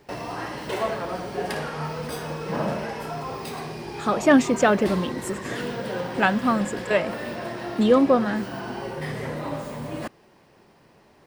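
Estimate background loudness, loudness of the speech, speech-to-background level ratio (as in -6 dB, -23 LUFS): -31.5 LUFS, -22.0 LUFS, 9.5 dB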